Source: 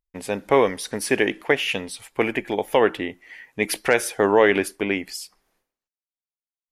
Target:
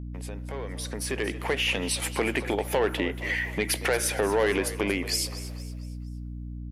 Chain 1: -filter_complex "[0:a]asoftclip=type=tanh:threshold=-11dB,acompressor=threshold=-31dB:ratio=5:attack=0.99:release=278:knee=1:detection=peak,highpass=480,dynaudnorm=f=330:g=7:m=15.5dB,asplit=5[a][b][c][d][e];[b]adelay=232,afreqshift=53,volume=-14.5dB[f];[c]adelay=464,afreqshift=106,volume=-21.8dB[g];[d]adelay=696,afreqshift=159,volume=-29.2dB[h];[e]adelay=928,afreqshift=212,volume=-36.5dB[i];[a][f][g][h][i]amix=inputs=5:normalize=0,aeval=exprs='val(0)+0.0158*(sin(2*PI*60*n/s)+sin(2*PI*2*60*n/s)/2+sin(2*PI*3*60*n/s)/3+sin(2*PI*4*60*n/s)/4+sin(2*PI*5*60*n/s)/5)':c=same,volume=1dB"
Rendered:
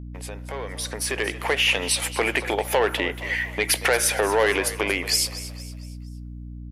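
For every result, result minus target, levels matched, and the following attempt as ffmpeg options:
250 Hz band -6.5 dB; compressor: peak gain reduction -6.5 dB
-filter_complex "[0:a]asoftclip=type=tanh:threshold=-11dB,acompressor=threshold=-31dB:ratio=5:attack=0.99:release=278:knee=1:detection=peak,highpass=190,dynaudnorm=f=330:g=7:m=15.5dB,asplit=5[a][b][c][d][e];[b]adelay=232,afreqshift=53,volume=-14.5dB[f];[c]adelay=464,afreqshift=106,volume=-21.8dB[g];[d]adelay=696,afreqshift=159,volume=-29.2dB[h];[e]adelay=928,afreqshift=212,volume=-36.5dB[i];[a][f][g][h][i]amix=inputs=5:normalize=0,aeval=exprs='val(0)+0.0158*(sin(2*PI*60*n/s)+sin(2*PI*2*60*n/s)/2+sin(2*PI*3*60*n/s)/3+sin(2*PI*4*60*n/s)/4+sin(2*PI*5*60*n/s)/5)':c=same,volume=1dB"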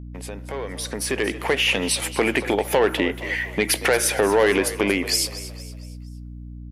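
compressor: peak gain reduction -6.5 dB
-filter_complex "[0:a]asoftclip=type=tanh:threshold=-11dB,acompressor=threshold=-39dB:ratio=5:attack=0.99:release=278:knee=1:detection=peak,highpass=190,dynaudnorm=f=330:g=7:m=15.5dB,asplit=5[a][b][c][d][e];[b]adelay=232,afreqshift=53,volume=-14.5dB[f];[c]adelay=464,afreqshift=106,volume=-21.8dB[g];[d]adelay=696,afreqshift=159,volume=-29.2dB[h];[e]adelay=928,afreqshift=212,volume=-36.5dB[i];[a][f][g][h][i]amix=inputs=5:normalize=0,aeval=exprs='val(0)+0.0158*(sin(2*PI*60*n/s)+sin(2*PI*2*60*n/s)/2+sin(2*PI*3*60*n/s)/3+sin(2*PI*4*60*n/s)/4+sin(2*PI*5*60*n/s)/5)':c=same,volume=1dB"

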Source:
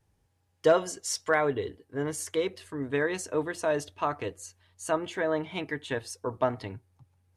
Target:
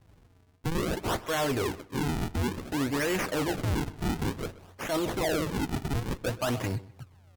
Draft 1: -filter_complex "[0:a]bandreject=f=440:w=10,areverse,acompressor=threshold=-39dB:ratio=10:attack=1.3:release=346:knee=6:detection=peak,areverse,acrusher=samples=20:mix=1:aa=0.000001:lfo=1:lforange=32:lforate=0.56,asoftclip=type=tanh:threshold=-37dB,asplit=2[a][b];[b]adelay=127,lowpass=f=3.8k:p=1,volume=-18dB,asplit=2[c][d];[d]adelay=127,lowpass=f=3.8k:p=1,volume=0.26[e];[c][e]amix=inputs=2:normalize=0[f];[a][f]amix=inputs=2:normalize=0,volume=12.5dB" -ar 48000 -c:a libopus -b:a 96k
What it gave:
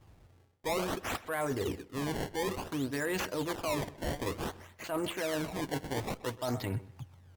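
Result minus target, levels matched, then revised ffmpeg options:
compressor: peak gain reduction +9.5 dB; decimation with a swept rate: distortion -7 dB
-filter_complex "[0:a]bandreject=f=440:w=10,areverse,acompressor=threshold=-28.5dB:ratio=10:attack=1.3:release=346:knee=6:detection=peak,areverse,acrusher=samples=46:mix=1:aa=0.000001:lfo=1:lforange=73.6:lforate=0.56,asoftclip=type=tanh:threshold=-37dB,asplit=2[a][b];[b]adelay=127,lowpass=f=3.8k:p=1,volume=-18dB,asplit=2[c][d];[d]adelay=127,lowpass=f=3.8k:p=1,volume=0.26[e];[c][e]amix=inputs=2:normalize=0[f];[a][f]amix=inputs=2:normalize=0,volume=12.5dB" -ar 48000 -c:a libopus -b:a 96k

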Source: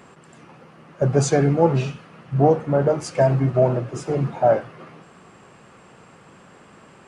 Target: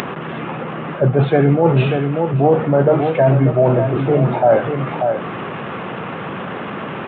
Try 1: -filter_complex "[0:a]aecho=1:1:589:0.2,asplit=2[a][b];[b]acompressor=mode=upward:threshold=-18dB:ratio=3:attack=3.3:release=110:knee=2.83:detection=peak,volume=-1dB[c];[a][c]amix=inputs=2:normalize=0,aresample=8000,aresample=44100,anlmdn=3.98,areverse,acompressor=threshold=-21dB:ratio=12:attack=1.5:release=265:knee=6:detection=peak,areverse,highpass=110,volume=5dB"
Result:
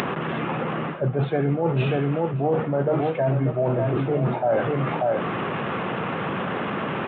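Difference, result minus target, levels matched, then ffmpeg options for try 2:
compressor: peak gain reduction +9.5 dB
-filter_complex "[0:a]aecho=1:1:589:0.2,asplit=2[a][b];[b]acompressor=mode=upward:threshold=-18dB:ratio=3:attack=3.3:release=110:knee=2.83:detection=peak,volume=-1dB[c];[a][c]amix=inputs=2:normalize=0,aresample=8000,aresample=44100,anlmdn=3.98,areverse,acompressor=threshold=-10.5dB:ratio=12:attack=1.5:release=265:knee=6:detection=peak,areverse,highpass=110,volume=5dB"

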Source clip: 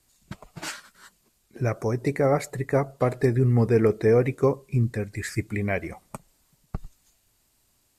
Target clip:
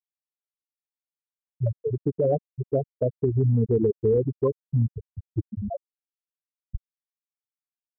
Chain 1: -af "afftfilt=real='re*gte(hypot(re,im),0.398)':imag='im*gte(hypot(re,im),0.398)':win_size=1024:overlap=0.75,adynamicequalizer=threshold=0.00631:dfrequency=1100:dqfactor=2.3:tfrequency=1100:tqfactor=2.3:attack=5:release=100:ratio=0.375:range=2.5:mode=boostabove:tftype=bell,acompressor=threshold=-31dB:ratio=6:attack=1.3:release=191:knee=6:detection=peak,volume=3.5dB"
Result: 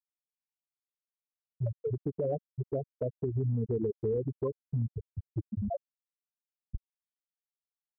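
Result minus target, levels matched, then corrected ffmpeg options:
compressor: peak gain reduction +9.5 dB
-af "afftfilt=real='re*gte(hypot(re,im),0.398)':imag='im*gte(hypot(re,im),0.398)':win_size=1024:overlap=0.75,adynamicequalizer=threshold=0.00631:dfrequency=1100:dqfactor=2.3:tfrequency=1100:tqfactor=2.3:attack=5:release=100:ratio=0.375:range=2.5:mode=boostabove:tftype=bell,acompressor=threshold=-19.5dB:ratio=6:attack=1.3:release=191:knee=6:detection=peak,volume=3.5dB"

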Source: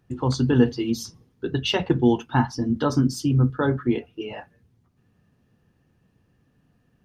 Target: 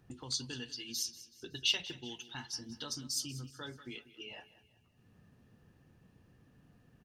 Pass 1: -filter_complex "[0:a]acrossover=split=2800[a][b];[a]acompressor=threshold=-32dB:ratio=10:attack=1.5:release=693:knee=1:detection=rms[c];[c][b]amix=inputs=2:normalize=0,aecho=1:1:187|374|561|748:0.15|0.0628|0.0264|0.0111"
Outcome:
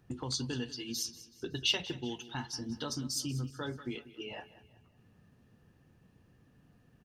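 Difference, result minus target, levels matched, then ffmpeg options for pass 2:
compressor: peak gain reduction -8.5 dB
-filter_complex "[0:a]acrossover=split=2800[a][b];[a]acompressor=threshold=-41.5dB:ratio=10:attack=1.5:release=693:knee=1:detection=rms[c];[c][b]amix=inputs=2:normalize=0,aecho=1:1:187|374|561|748:0.15|0.0628|0.0264|0.0111"

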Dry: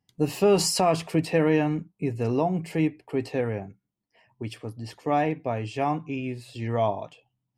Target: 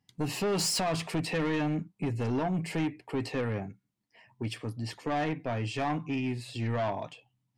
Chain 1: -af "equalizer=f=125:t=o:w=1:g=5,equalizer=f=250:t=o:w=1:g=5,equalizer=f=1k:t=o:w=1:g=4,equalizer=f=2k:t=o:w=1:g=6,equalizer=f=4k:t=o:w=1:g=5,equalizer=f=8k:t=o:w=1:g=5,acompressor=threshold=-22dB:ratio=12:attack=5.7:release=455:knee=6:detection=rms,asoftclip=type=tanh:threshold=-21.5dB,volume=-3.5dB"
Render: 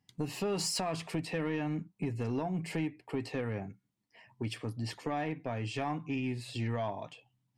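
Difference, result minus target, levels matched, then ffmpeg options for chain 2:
compressor: peak gain reduction +8.5 dB
-af "equalizer=f=125:t=o:w=1:g=5,equalizer=f=250:t=o:w=1:g=5,equalizer=f=1k:t=o:w=1:g=4,equalizer=f=2k:t=o:w=1:g=6,equalizer=f=4k:t=o:w=1:g=5,equalizer=f=8k:t=o:w=1:g=5,acompressor=threshold=-12dB:ratio=12:attack=5.7:release=455:knee=6:detection=rms,asoftclip=type=tanh:threshold=-21.5dB,volume=-3.5dB"

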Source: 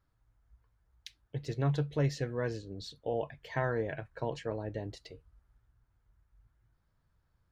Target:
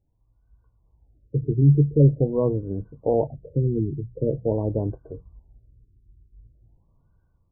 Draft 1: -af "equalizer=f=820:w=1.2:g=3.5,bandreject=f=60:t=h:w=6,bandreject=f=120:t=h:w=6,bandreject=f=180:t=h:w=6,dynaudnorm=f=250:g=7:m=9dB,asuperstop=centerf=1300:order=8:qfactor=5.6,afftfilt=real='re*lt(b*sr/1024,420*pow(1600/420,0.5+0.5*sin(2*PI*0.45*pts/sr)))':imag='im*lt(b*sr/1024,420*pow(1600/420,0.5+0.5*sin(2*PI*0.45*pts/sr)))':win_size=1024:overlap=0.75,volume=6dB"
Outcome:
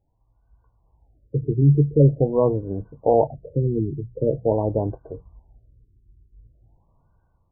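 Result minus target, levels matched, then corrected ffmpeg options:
1000 Hz band +7.5 dB
-af "equalizer=f=820:w=1.2:g=-6.5,bandreject=f=60:t=h:w=6,bandreject=f=120:t=h:w=6,bandreject=f=180:t=h:w=6,dynaudnorm=f=250:g=7:m=9dB,asuperstop=centerf=1300:order=8:qfactor=5.6,afftfilt=real='re*lt(b*sr/1024,420*pow(1600/420,0.5+0.5*sin(2*PI*0.45*pts/sr)))':imag='im*lt(b*sr/1024,420*pow(1600/420,0.5+0.5*sin(2*PI*0.45*pts/sr)))':win_size=1024:overlap=0.75,volume=6dB"

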